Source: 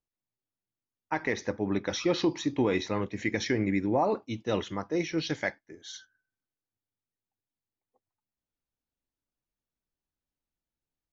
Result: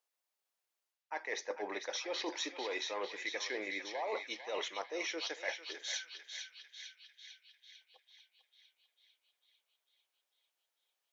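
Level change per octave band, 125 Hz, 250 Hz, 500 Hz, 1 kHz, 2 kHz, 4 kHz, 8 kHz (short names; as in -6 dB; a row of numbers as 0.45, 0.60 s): under -35 dB, -19.5 dB, -10.0 dB, -8.5 dB, -4.5 dB, -1.0 dB, n/a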